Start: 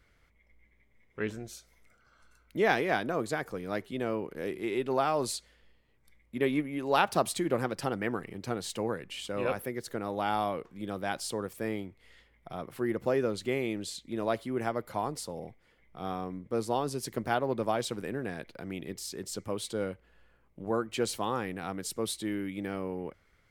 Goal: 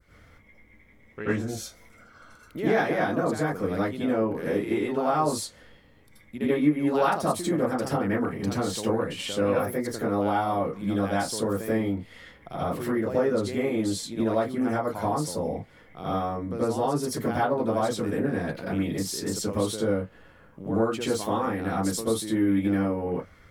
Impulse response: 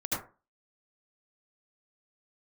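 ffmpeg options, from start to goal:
-filter_complex "[0:a]adynamicequalizer=threshold=0.00355:dfrequency=3000:dqfactor=0.93:tfrequency=3000:tqfactor=0.93:attack=5:release=100:ratio=0.375:range=2.5:mode=cutabove:tftype=bell,acompressor=threshold=-39dB:ratio=2.5[link_01];[1:a]atrim=start_sample=2205,afade=type=out:start_time=0.17:duration=0.01,atrim=end_sample=7938,asetrate=40572,aresample=44100[link_02];[link_01][link_02]afir=irnorm=-1:irlink=0,volume=6dB"

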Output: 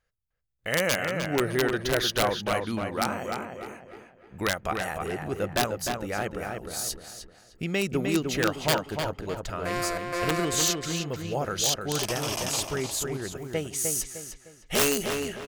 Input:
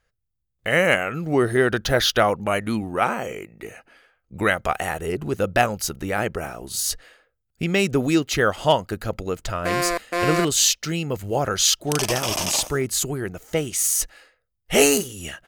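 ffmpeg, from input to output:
ffmpeg -i in.wav -filter_complex "[0:a]aeval=exprs='(mod(2.51*val(0)+1,2)-1)/2.51':channel_layout=same,asplit=2[link_01][link_02];[link_02]adelay=305,lowpass=frequency=3200:poles=1,volume=-4.5dB,asplit=2[link_03][link_04];[link_04]adelay=305,lowpass=frequency=3200:poles=1,volume=0.37,asplit=2[link_05][link_06];[link_06]adelay=305,lowpass=frequency=3200:poles=1,volume=0.37,asplit=2[link_07][link_08];[link_08]adelay=305,lowpass=frequency=3200:poles=1,volume=0.37,asplit=2[link_09][link_10];[link_10]adelay=305,lowpass=frequency=3200:poles=1,volume=0.37[link_11];[link_01][link_03][link_05][link_07][link_09][link_11]amix=inputs=6:normalize=0,volume=-7dB" out.wav

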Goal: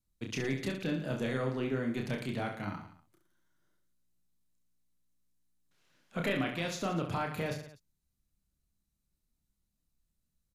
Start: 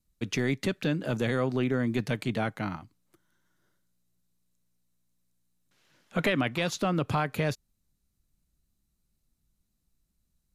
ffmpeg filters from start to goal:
ffmpeg -i in.wav -af "aecho=1:1:30|67.5|114.4|173|246.2:0.631|0.398|0.251|0.158|0.1,volume=-7.5dB" out.wav

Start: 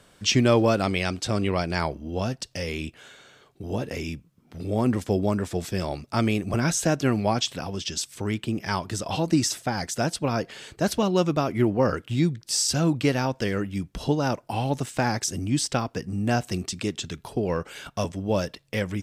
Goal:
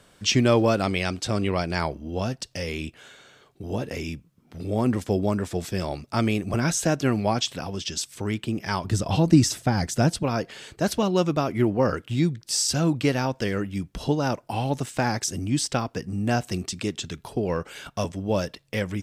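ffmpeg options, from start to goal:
ffmpeg -i in.wav -filter_complex "[0:a]asettb=1/sr,asplit=3[link_01][link_02][link_03];[link_01]atrim=end=8.844[link_04];[link_02]atrim=start=8.84:end=10.23,asetpts=PTS-STARTPTS,afade=type=in:duration=0.004:curve=qsin,afade=type=out:start_time=1.386:duration=0.004:curve=qsin,lowshelf=frequency=250:gain=11[link_05];[link_03]atrim=start=10.226[link_06];[link_04][link_05]acrossfade=duration=0.004:curve1=hsin:curve2=qsin[link_07];[link_07][link_06]acrossfade=duration=0.004:curve1=qsin:curve2=hsin" out.wav

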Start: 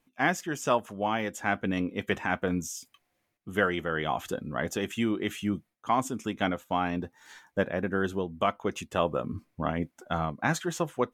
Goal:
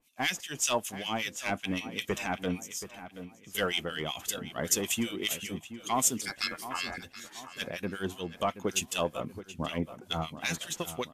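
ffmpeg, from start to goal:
ffmpeg -i in.wav -filter_complex "[0:a]asettb=1/sr,asplit=3[link_01][link_02][link_03];[link_01]atrim=end=1.654[link_04];[link_02]atrim=start=1.65:end=2.05,asetpts=PTS-STARTPTS,afade=type=in:duration=0.004:curve=qsin,afade=type=out:start_time=0.396:duration=0.004:curve=qsin,bandreject=frequency=175.5:width_type=h:width=4,bandreject=frequency=351:width_type=h:width=4,bandreject=frequency=526.5:width_type=h:width=4,bandreject=frequency=702:width_type=h:width=4,bandreject=frequency=877.5:width_type=h:width=4,bandreject=frequency=1053:width_type=h:width=4,bandreject=frequency=1228.5:width_type=h:width=4,bandreject=frequency=1404:width_type=h:width=4,bandreject=frequency=1579.5:width_type=h:width=4,bandreject=frequency=1755:width_type=h:width=4,bandreject=frequency=1930.5:width_type=h:width=4,bandreject=frequency=2106:width_type=h:width=4,bandreject=frequency=2281.5:width_type=h:width=4,bandreject=frequency=2457:width_type=h:width=4,bandreject=frequency=2632.5:width_type=h:width=4,bandreject=frequency=2808:width_type=h:width=4,bandreject=frequency=2983.5:width_type=h:width=4,bandreject=frequency=3159:width_type=h:width=4,bandreject=frequency=3334.5:width_type=h:width=4,bandreject=frequency=3510:width_type=h:width=4,bandreject=frequency=3685.5:width_type=h:width=4,bandreject=frequency=3861:width_type=h:width=4,bandreject=frequency=4036.5:width_type=h:width=4,bandreject=frequency=4212:width_type=h:width=4,bandreject=frequency=4387.5:width_type=h:width=4,bandreject=frequency=4563:width_type=h:width=4,bandreject=frequency=4738.5:width_type=h:width=4,bandreject=frequency=4914:width_type=h:width=4,bandreject=frequency=5089.5:width_type=h:width=4,bandreject=frequency=5265:width_type=h:width=4,bandreject=frequency=5440.5:width_type=h:width=4,bandreject=frequency=5616:width_type=h:width=4,bandreject=frequency=5791.5:width_type=h:width=4,bandreject=frequency=5967:width_type=h:width=4,bandreject=frequency=6142.5:width_type=h:width=4,bandreject=frequency=6318:width_type=h:width=4,bandreject=frequency=6493.5:width_type=h:width=4,bandreject=frequency=6669:width_type=h:width=4[link_05];[link_03]atrim=start=2.046[link_06];[link_04][link_05]acrossfade=duration=0.004:curve1=hsin:curve2=qsin[link_07];[link_07][link_06]acrossfade=duration=0.004:curve1=qsin:curve2=hsin,asettb=1/sr,asplit=3[link_08][link_09][link_10];[link_08]atrim=end=2.604[link_11];[link_09]atrim=start=2.6:end=3.55,asetpts=PTS-STARTPTS,afade=type=in:duration=0.004:curve=qsin,afade=type=out:start_time=0.946:duration=0.004:curve=qsin,acompressor=threshold=-54dB:ratio=2.5[link_12];[link_10]atrim=start=3.546[link_13];[link_11][link_12]acrossfade=duration=0.004:curve1=hsin:curve2=qsin[link_14];[link_14][link_13]acrossfade=duration=0.004:curve1=qsin:curve2=hsin,aexciter=amount=5.3:drive=4.7:freq=2300,asettb=1/sr,asplit=3[link_15][link_16][link_17];[link_15]atrim=end=6.214[link_18];[link_16]atrim=start=6.21:end=6.98,asetpts=PTS-STARTPTS,afade=type=in:duration=0.004:curve=qsin,afade=type=out:start_time=0.766:duration=0.004:curve=qsin,aeval=exprs='val(0)*sin(2*PI*1900*n/s)':channel_layout=same[link_19];[link_17]atrim=start=6.976[link_20];[link_18][link_19]acrossfade=duration=0.004:curve1=hsin:curve2=qsin[link_21];[link_21][link_20]acrossfade=duration=0.004:curve1=qsin:curve2=hsin,asoftclip=type=tanh:threshold=-14.5dB,acrossover=split=1600[link_22][link_23];[link_22]aeval=exprs='val(0)*(1-1/2+1/2*cos(2*PI*5.2*n/s))':channel_layout=same[link_24];[link_23]aeval=exprs='val(0)*(1-1/2-1/2*cos(2*PI*5.2*n/s))':channel_layout=same[link_25];[link_24][link_25]amix=inputs=2:normalize=0,asplit=2[link_26][link_27];[link_27]adelay=727,lowpass=frequency=2700:poles=1,volume=-12dB,asplit=2[link_28][link_29];[link_29]adelay=727,lowpass=frequency=2700:poles=1,volume=0.44,asplit=2[link_30][link_31];[link_31]adelay=727,lowpass=frequency=2700:poles=1,volume=0.44,asplit=2[link_32][link_33];[link_33]adelay=727,lowpass=frequency=2700:poles=1,volume=0.44[link_34];[link_26][link_28][link_30][link_32][link_34]amix=inputs=5:normalize=0" -ar 32000 -c:a wmav2 -b:a 128k out.wma

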